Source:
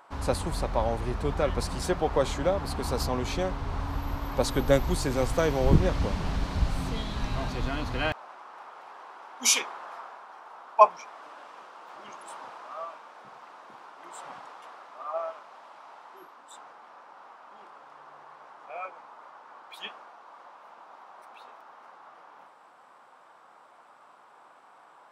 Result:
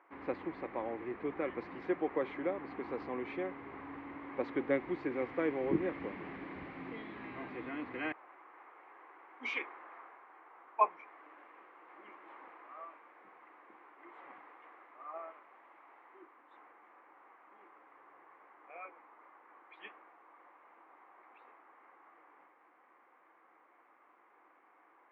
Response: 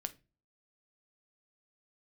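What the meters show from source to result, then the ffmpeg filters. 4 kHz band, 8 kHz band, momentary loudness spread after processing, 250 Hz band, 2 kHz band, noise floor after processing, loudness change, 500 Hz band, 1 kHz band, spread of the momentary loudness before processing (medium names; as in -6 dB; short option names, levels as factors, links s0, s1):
-22.0 dB, under -40 dB, 23 LU, -6.5 dB, -7.0 dB, -66 dBFS, -10.5 dB, -9.5 dB, -11.0 dB, 23 LU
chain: -af "highpass=320,equalizer=f=320:t=q:w=4:g=10,equalizer=f=630:t=q:w=4:g=-8,equalizer=f=900:t=q:w=4:g=-6,equalizer=f=1400:t=q:w=4:g=-6,equalizer=f=2100:t=q:w=4:g=8,lowpass=f=2200:w=0.5412,lowpass=f=2200:w=1.3066,volume=0.473"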